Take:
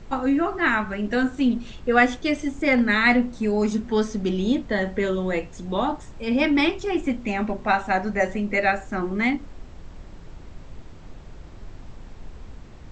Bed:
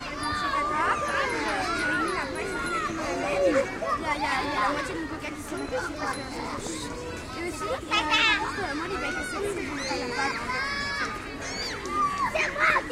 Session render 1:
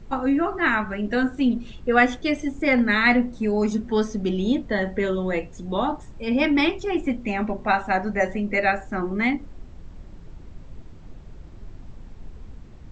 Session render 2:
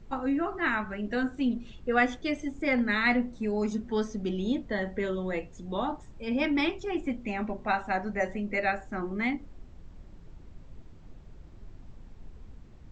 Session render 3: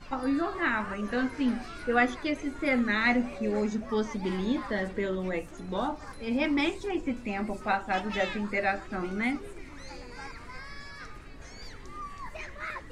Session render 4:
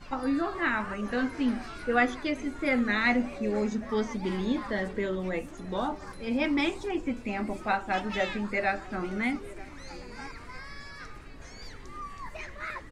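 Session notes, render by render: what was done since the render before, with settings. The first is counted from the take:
denoiser 6 dB, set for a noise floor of -43 dBFS
gain -7 dB
add bed -15.5 dB
outdoor echo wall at 160 m, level -20 dB

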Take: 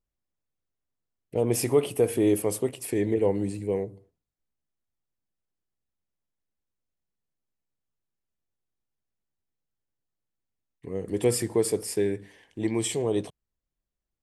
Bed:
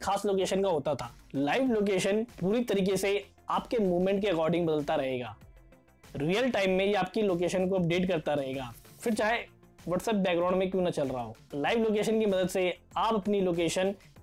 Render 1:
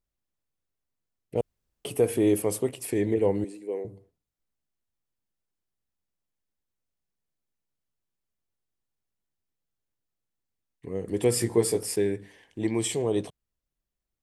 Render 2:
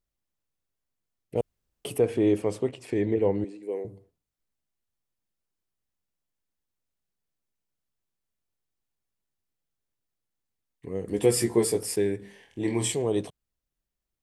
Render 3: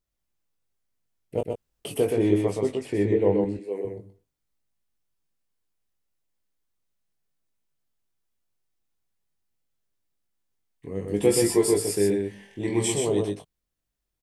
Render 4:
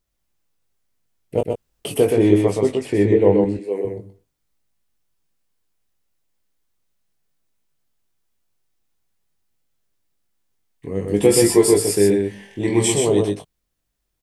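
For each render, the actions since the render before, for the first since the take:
1.41–1.85 room tone; 3.44–3.85 ladder high-pass 260 Hz, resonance 30%; 11.35–11.96 doubler 17 ms -3.5 dB
1.98–3.63 air absorption 110 m; 11.09–11.65 doubler 14 ms -5 dB; 12.17–12.92 flutter echo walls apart 4.3 m, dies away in 0.29 s
doubler 20 ms -5.5 dB; on a send: echo 0.124 s -4 dB
gain +7 dB; limiter -2 dBFS, peak gain reduction 2.5 dB

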